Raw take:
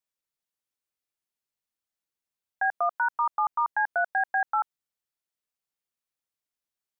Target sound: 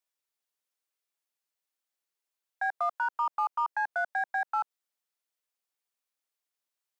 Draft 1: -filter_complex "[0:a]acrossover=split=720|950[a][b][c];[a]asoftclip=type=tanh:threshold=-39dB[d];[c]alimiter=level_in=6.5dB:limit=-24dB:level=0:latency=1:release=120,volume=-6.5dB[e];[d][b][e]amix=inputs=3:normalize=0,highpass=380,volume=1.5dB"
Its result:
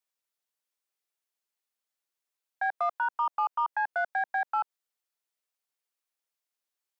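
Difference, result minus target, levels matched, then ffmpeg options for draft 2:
soft clip: distortion -4 dB
-filter_complex "[0:a]acrossover=split=720|950[a][b][c];[a]asoftclip=type=tanh:threshold=-48.5dB[d];[c]alimiter=level_in=6.5dB:limit=-24dB:level=0:latency=1:release=120,volume=-6.5dB[e];[d][b][e]amix=inputs=3:normalize=0,highpass=380,volume=1.5dB"

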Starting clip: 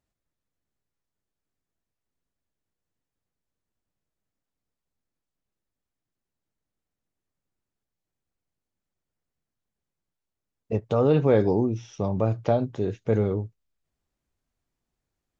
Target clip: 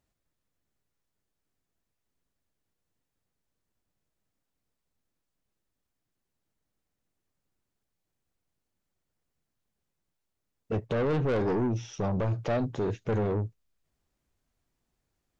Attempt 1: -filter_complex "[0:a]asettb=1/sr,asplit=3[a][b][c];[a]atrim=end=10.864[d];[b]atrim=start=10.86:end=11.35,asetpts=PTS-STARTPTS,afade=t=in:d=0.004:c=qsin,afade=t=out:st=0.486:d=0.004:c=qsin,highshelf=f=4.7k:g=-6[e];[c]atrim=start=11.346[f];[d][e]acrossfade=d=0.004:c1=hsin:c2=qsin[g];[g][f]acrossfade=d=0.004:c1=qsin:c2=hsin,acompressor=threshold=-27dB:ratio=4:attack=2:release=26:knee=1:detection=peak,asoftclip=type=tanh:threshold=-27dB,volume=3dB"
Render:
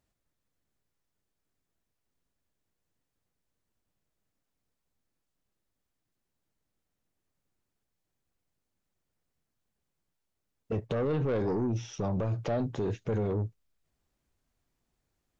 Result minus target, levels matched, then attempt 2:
compressor: peak gain reduction +6 dB
-filter_complex "[0:a]asettb=1/sr,asplit=3[a][b][c];[a]atrim=end=10.864[d];[b]atrim=start=10.86:end=11.35,asetpts=PTS-STARTPTS,afade=t=in:d=0.004:c=qsin,afade=t=out:st=0.486:d=0.004:c=qsin,highshelf=f=4.7k:g=-6[e];[c]atrim=start=11.346[f];[d][e]acrossfade=d=0.004:c1=hsin:c2=qsin[g];[g][f]acrossfade=d=0.004:c1=qsin:c2=hsin,acompressor=threshold=-19dB:ratio=4:attack=2:release=26:knee=1:detection=peak,asoftclip=type=tanh:threshold=-27dB,volume=3dB"

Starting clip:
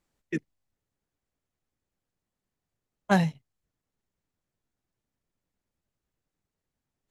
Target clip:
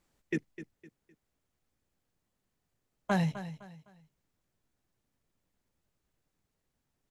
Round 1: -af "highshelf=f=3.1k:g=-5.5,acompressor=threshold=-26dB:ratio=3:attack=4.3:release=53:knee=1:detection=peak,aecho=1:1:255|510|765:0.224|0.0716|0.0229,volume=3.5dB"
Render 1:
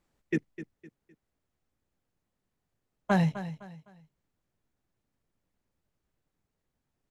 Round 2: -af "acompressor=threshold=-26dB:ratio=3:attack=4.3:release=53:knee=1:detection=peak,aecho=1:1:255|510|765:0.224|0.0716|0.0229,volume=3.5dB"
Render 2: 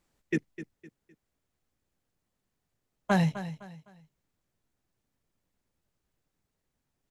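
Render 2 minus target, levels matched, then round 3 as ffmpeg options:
compressor: peak gain reduction -4 dB
-af "acompressor=threshold=-32dB:ratio=3:attack=4.3:release=53:knee=1:detection=peak,aecho=1:1:255|510|765:0.224|0.0716|0.0229,volume=3.5dB"

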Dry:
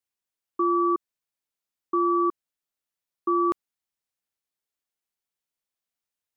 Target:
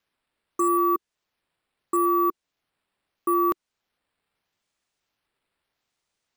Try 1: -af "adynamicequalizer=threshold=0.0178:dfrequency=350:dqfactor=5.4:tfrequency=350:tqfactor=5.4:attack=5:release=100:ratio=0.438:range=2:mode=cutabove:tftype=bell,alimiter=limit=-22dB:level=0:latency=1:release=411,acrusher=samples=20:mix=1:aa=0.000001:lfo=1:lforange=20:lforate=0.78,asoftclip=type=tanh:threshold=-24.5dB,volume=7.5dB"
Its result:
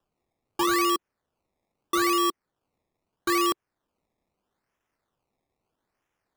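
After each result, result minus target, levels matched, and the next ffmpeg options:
decimation with a swept rate: distortion +15 dB; soft clip: distortion +13 dB
-af "adynamicequalizer=threshold=0.0178:dfrequency=350:dqfactor=5.4:tfrequency=350:tqfactor=5.4:attack=5:release=100:ratio=0.438:range=2:mode=cutabove:tftype=bell,alimiter=limit=-22dB:level=0:latency=1:release=411,acrusher=samples=5:mix=1:aa=0.000001:lfo=1:lforange=5:lforate=0.78,asoftclip=type=tanh:threshold=-24.5dB,volume=7.5dB"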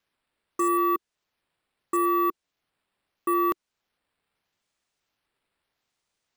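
soft clip: distortion +13 dB
-af "adynamicequalizer=threshold=0.0178:dfrequency=350:dqfactor=5.4:tfrequency=350:tqfactor=5.4:attack=5:release=100:ratio=0.438:range=2:mode=cutabove:tftype=bell,alimiter=limit=-22dB:level=0:latency=1:release=411,acrusher=samples=5:mix=1:aa=0.000001:lfo=1:lforange=5:lforate=0.78,asoftclip=type=tanh:threshold=-17dB,volume=7.5dB"

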